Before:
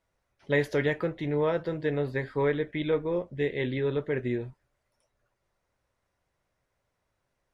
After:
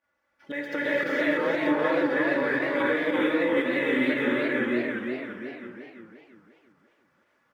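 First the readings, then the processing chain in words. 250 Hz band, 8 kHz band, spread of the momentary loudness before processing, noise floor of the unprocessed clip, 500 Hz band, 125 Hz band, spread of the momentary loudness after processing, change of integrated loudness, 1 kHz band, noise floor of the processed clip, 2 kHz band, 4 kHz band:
+6.5 dB, can't be measured, 4 LU, −80 dBFS, +2.0 dB, −11.0 dB, 13 LU, +3.5 dB, +7.5 dB, −74 dBFS, +9.5 dB, +6.0 dB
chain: running median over 5 samples
high-pass filter 140 Hz 12 dB per octave
parametric band 1,600 Hz +9 dB 1.1 octaves
notch filter 3,900 Hz, Q 22
comb filter 3.5 ms, depth 83%
downward compressor, threshold −25 dBFS, peak gain reduction 9.5 dB
reverb whose tail is shaped and stops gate 490 ms rising, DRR −6.5 dB
fake sidechain pumping 116 BPM, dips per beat 1, −11 dB, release 71 ms
single-tap delay 906 ms −16 dB
feedback echo with a swinging delay time 344 ms, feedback 41%, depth 161 cents, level −4.5 dB
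level −3 dB

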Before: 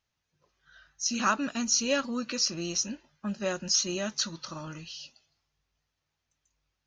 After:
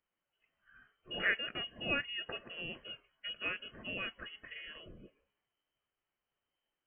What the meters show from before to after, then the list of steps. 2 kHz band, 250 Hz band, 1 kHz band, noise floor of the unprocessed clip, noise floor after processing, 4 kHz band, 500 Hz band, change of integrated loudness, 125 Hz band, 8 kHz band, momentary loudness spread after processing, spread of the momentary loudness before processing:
0.0 dB, −17.0 dB, −14.0 dB, −83 dBFS, below −85 dBFS, −8.0 dB, −12.0 dB, −9.5 dB, −11.5 dB, below −40 dB, 16 LU, 15 LU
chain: spectral tilt +2 dB per octave
voice inversion scrambler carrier 3,100 Hz
level −6 dB

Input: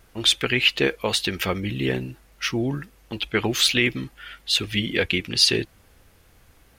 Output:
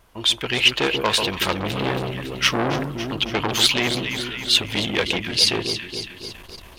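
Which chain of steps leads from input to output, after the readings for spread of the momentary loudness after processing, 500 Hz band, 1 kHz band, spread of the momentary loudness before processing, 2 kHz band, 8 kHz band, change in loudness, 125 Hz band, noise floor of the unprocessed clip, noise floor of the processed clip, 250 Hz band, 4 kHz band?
12 LU, +1.5 dB, +8.5 dB, 16 LU, +1.5 dB, +2.0 dB, +1.5 dB, +0.5 dB, −57 dBFS, −43 dBFS, 0.0 dB, +3.0 dB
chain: automatic gain control gain up to 13.5 dB
thirty-one-band graphic EQ 630 Hz +5 dB, 1,000 Hz +11 dB, 3,150 Hz +4 dB
on a send: delay that swaps between a low-pass and a high-pass 139 ms, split 1,100 Hz, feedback 75%, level −7 dB
on the sum: saturating transformer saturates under 2,300 Hz
level −2.5 dB

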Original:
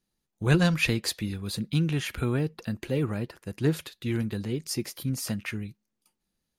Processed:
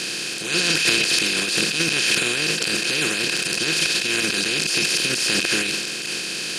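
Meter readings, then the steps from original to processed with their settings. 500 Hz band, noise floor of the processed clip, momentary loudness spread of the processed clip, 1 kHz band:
+3.0 dB, −28 dBFS, 7 LU, +7.5 dB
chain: compressor on every frequency bin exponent 0.2
meter weighting curve ITU-R 468
reversed playback
upward compression, threshold −18 dBFS
reversed playback
transient designer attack −11 dB, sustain +10 dB
hollow resonant body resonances 210/340/3,100 Hz, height 7 dB, ringing for 25 ms
level −5.5 dB

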